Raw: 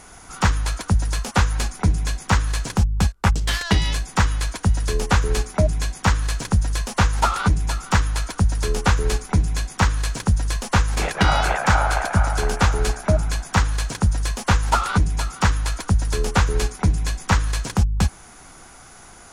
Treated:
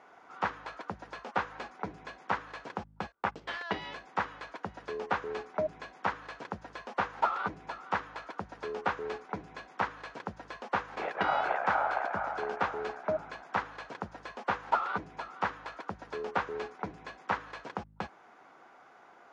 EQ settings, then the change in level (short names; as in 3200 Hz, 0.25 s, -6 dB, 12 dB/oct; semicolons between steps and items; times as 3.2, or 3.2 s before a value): HPF 470 Hz 12 dB/oct; tape spacing loss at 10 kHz 44 dB; -3.0 dB